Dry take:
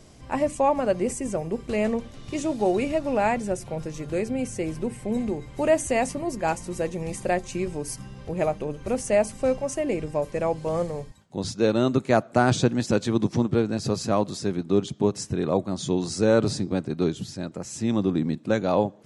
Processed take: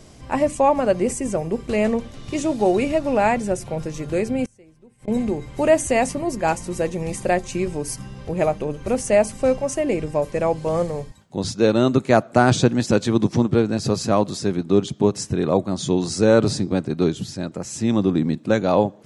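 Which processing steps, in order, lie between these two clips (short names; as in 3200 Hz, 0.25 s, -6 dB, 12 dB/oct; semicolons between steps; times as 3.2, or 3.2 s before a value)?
4.45–5.08 flipped gate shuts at -28 dBFS, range -26 dB; gain +4.5 dB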